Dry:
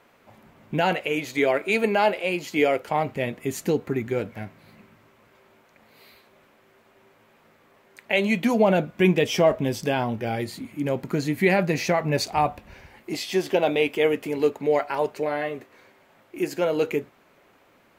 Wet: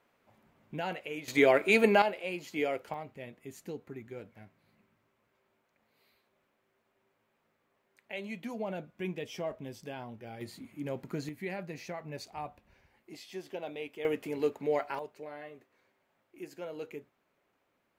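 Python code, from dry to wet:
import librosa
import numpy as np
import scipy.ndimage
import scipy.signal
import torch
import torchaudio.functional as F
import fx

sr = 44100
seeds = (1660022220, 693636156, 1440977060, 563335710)

y = fx.gain(x, sr, db=fx.steps((0.0, -13.5), (1.28, -1.5), (2.02, -11.0), (2.94, -18.0), (10.41, -11.5), (11.29, -18.5), (14.05, -8.5), (14.99, -18.0)))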